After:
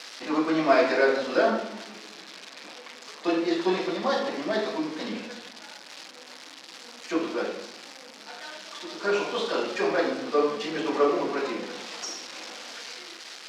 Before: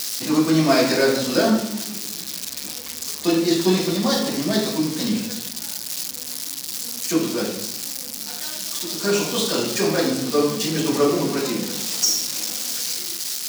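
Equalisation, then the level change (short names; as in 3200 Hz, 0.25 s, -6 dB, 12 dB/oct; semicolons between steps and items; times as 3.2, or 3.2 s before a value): HPF 460 Hz 12 dB/oct; LPF 2300 Hz 12 dB/oct; 0.0 dB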